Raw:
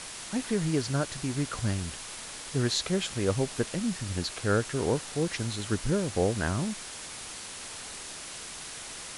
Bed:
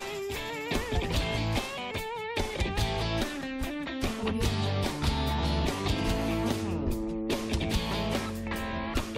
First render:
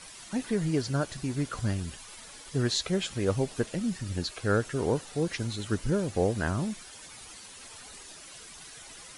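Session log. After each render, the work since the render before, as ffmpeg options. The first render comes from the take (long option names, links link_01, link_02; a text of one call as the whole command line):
ffmpeg -i in.wav -af "afftdn=noise_reduction=11:noise_floor=-42" out.wav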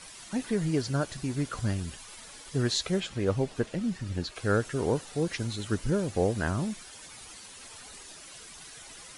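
ffmpeg -i in.wav -filter_complex "[0:a]asettb=1/sr,asplit=3[link_01][link_02][link_03];[link_01]atrim=end=3.004[link_04];[link_02]atrim=start=3:end=4.36,asetpts=PTS-STARTPTS,afade=type=in:duration=0.004:curve=qsin,afade=type=out:start_time=1.356:duration=0.004:curve=qsin,lowpass=frequency=3800:poles=1[link_05];[link_03]atrim=start=4.356[link_06];[link_04][link_05]acrossfade=duration=0.004:curve1=hsin:curve2=qsin[link_07];[link_07][link_06]acrossfade=duration=0.004:curve1=qsin:curve2=hsin" out.wav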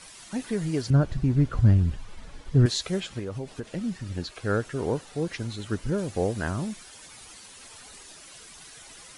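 ffmpeg -i in.wav -filter_complex "[0:a]asettb=1/sr,asplit=3[link_01][link_02][link_03];[link_01]atrim=end=0.904[link_04];[link_02]atrim=start=0.9:end=2.66,asetpts=PTS-STARTPTS,afade=type=in:duration=0.004:curve=qsin,afade=type=out:start_time=1.756:duration=0.004:curve=qsin,aemphasis=mode=reproduction:type=riaa[link_05];[link_03]atrim=start=2.656[link_06];[link_04][link_05]acrossfade=duration=0.004:curve1=hsin:curve2=qsin[link_07];[link_07][link_06]acrossfade=duration=0.004:curve1=qsin:curve2=hsin,asettb=1/sr,asplit=3[link_08][link_09][link_10];[link_08]atrim=end=3.194[link_11];[link_09]atrim=start=3.19:end=3.72,asetpts=PTS-STARTPTS,afade=type=in:duration=0.004:curve=qsin,afade=type=out:start_time=0.526:duration=0.004:curve=qsin,acompressor=threshold=-29dB:ratio=6:attack=3.2:release=140:knee=1:detection=peak[link_12];[link_10]atrim=start=3.716[link_13];[link_11][link_12]acrossfade=duration=0.004:curve1=hsin:curve2=qsin[link_14];[link_14][link_13]acrossfade=duration=0.004:curve1=qsin:curve2=hsin,asettb=1/sr,asplit=3[link_15][link_16][link_17];[link_15]atrim=end=4.364[link_18];[link_16]atrim=start=4.36:end=5.98,asetpts=PTS-STARTPTS,afade=type=in:duration=0.004:curve=qsin,afade=type=out:start_time=1.616:duration=0.004:curve=qsin,highshelf=frequency=4900:gain=-5.5[link_19];[link_17]atrim=start=5.976[link_20];[link_18][link_19]acrossfade=duration=0.004:curve1=hsin:curve2=qsin[link_21];[link_21][link_20]acrossfade=duration=0.004:curve1=qsin:curve2=hsin" out.wav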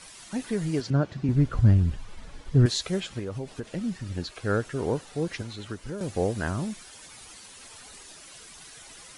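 ffmpeg -i in.wav -filter_complex "[0:a]asettb=1/sr,asplit=3[link_01][link_02][link_03];[link_01]atrim=end=0.804[link_04];[link_02]atrim=start=0.8:end=1.29,asetpts=PTS-STARTPTS,afade=type=in:duration=0.004:curve=qsin,afade=type=out:start_time=0.486:duration=0.004:curve=qsin,highpass=160,lowpass=6100[link_05];[link_03]atrim=start=1.286[link_06];[link_04][link_05]acrossfade=duration=0.004:curve1=hsin:curve2=qsin[link_07];[link_07][link_06]acrossfade=duration=0.004:curve1=qsin:curve2=hsin,asettb=1/sr,asplit=3[link_08][link_09][link_10];[link_08]atrim=end=5.414[link_11];[link_09]atrim=start=5.41:end=6.01,asetpts=PTS-STARTPTS,afade=type=in:duration=0.004:curve=qsin,afade=type=out:start_time=0.596:duration=0.004:curve=qsin,acrossover=split=360|5500[link_12][link_13][link_14];[link_12]acompressor=threshold=-37dB:ratio=4[link_15];[link_13]acompressor=threshold=-38dB:ratio=4[link_16];[link_14]acompressor=threshold=-56dB:ratio=4[link_17];[link_15][link_16][link_17]amix=inputs=3:normalize=0[link_18];[link_10]atrim=start=6.006[link_19];[link_11][link_18]acrossfade=duration=0.004:curve1=hsin:curve2=qsin[link_20];[link_20][link_19]acrossfade=duration=0.004:curve1=qsin:curve2=hsin" out.wav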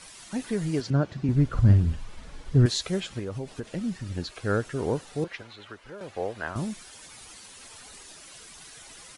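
ffmpeg -i in.wav -filter_complex "[0:a]asplit=3[link_01][link_02][link_03];[link_01]afade=type=out:start_time=1.55:duration=0.02[link_04];[link_02]asplit=2[link_05][link_06];[link_06]adelay=49,volume=-9dB[link_07];[link_05][link_07]amix=inputs=2:normalize=0,afade=type=in:start_time=1.55:duration=0.02,afade=type=out:start_time=2.57:duration=0.02[link_08];[link_03]afade=type=in:start_time=2.57:duration=0.02[link_09];[link_04][link_08][link_09]amix=inputs=3:normalize=0,asettb=1/sr,asplit=3[link_10][link_11][link_12];[link_10]atrim=end=5.244[link_13];[link_11]atrim=start=5.24:end=6.56,asetpts=PTS-STARTPTS,afade=type=in:duration=0.004:curve=qsin,afade=type=out:start_time=1.316:duration=0.004:curve=qsin,acrossover=split=470 3800:gain=0.2 1 0.2[link_14][link_15][link_16];[link_14][link_15][link_16]amix=inputs=3:normalize=0[link_17];[link_12]atrim=start=6.556[link_18];[link_13][link_17]acrossfade=duration=0.004:curve1=hsin:curve2=qsin[link_19];[link_19][link_18]acrossfade=duration=0.004:curve1=qsin:curve2=hsin" out.wav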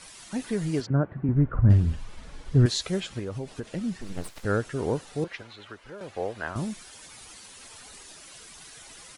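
ffmpeg -i in.wav -filter_complex "[0:a]asplit=3[link_01][link_02][link_03];[link_01]afade=type=out:start_time=0.85:duration=0.02[link_04];[link_02]lowpass=frequency=1800:width=0.5412,lowpass=frequency=1800:width=1.3066,afade=type=in:start_time=0.85:duration=0.02,afade=type=out:start_time=1.69:duration=0.02[link_05];[link_03]afade=type=in:start_time=1.69:duration=0.02[link_06];[link_04][link_05][link_06]amix=inputs=3:normalize=0,asettb=1/sr,asplit=3[link_07][link_08][link_09];[link_07]atrim=end=4.014[link_10];[link_08]atrim=start=4.01:end=4.45,asetpts=PTS-STARTPTS,afade=type=in:duration=0.004:curve=qsin,afade=type=out:start_time=0.436:duration=0.004:curve=qsin,aeval=exprs='abs(val(0))':channel_layout=same[link_11];[link_09]atrim=start=4.446[link_12];[link_10][link_11]acrossfade=duration=0.004:curve1=hsin:curve2=qsin[link_13];[link_13][link_12]acrossfade=duration=0.004:curve1=qsin:curve2=hsin" out.wav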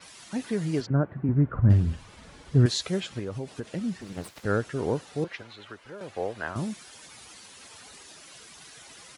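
ffmpeg -i in.wav -af "highpass=75,adynamicequalizer=threshold=0.00126:dfrequency=9100:dqfactor=1.4:tfrequency=9100:tqfactor=1.4:attack=5:release=100:ratio=0.375:range=2:mode=cutabove:tftype=bell" out.wav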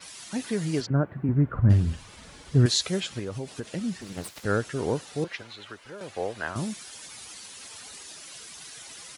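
ffmpeg -i in.wav -af "highshelf=frequency=2900:gain=7" out.wav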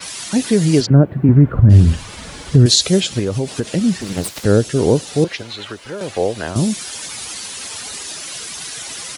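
ffmpeg -i in.wav -filter_complex "[0:a]acrossover=split=690|2700[link_01][link_02][link_03];[link_02]acompressor=threshold=-50dB:ratio=6[link_04];[link_01][link_04][link_03]amix=inputs=3:normalize=0,alimiter=level_in=14.5dB:limit=-1dB:release=50:level=0:latency=1" out.wav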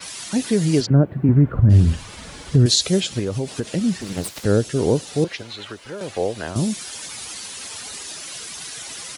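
ffmpeg -i in.wav -af "volume=-4.5dB" out.wav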